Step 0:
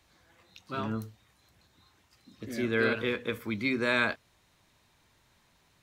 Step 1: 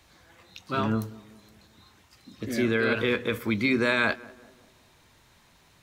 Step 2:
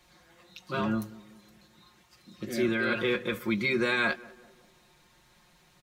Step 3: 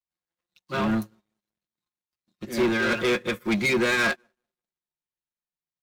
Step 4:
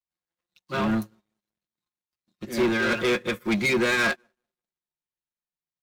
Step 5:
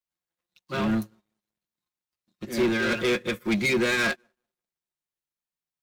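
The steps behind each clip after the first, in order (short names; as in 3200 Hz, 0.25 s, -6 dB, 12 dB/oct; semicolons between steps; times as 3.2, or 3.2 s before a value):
limiter -21.5 dBFS, peak gain reduction 7.5 dB; tape echo 0.192 s, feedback 57%, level -17.5 dB, low-pass 1000 Hz; gain +7 dB
comb 5.6 ms, depth 83%; gain -4.5 dB
sample leveller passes 3; upward expander 2.5:1, over -43 dBFS
nothing audible
dynamic EQ 1000 Hz, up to -4 dB, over -37 dBFS, Q 1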